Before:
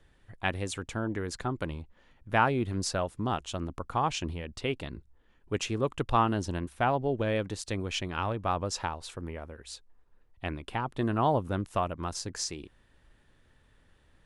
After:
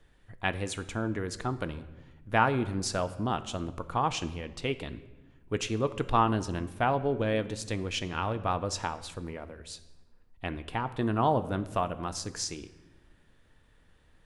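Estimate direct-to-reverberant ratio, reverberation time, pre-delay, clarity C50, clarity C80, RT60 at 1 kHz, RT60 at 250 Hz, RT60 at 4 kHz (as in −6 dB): 11.0 dB, 1.2 s, 4 ms, 15.0 dB, 17.0 dB, 1.1 s, 1.8 s, 0.85 s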